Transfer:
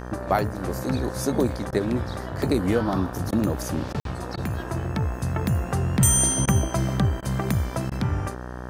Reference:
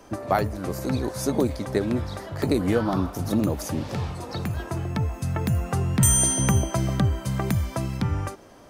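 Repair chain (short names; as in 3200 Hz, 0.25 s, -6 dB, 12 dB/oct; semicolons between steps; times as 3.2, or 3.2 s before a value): de-hum 61.7 Hz, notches 30; interpolate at 4, 52 ms; interpolate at 1.71/3.31/3.93/4.36/6.46/7.21/7.9, 14 ms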